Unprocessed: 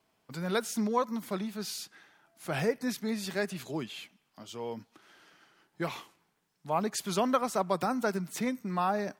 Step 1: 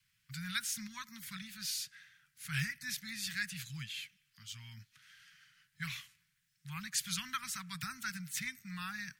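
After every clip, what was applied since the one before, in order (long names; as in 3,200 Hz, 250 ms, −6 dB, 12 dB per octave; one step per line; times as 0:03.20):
Chebyshev band-stop filter 140–1,700 Hz, order 3
level +1.5 dB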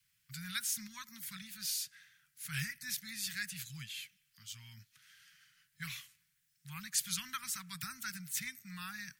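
high-shelf EQ 6,700 Hz +10 dB
level −3.5 dB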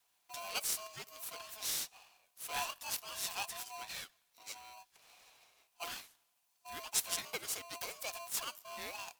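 ring modulator with a square carrier 860 Hz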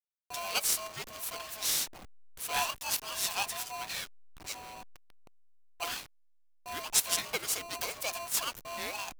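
hold until the input has moved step −49 dBFS
level +7 dB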